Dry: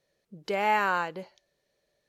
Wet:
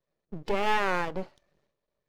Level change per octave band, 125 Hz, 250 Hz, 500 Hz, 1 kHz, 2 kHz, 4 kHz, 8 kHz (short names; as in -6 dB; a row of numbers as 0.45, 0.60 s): +4.5 dB, +3.0 dB, +1.0 dB, -2.5 dB, -1.5 dB, +2.5 dB, n/a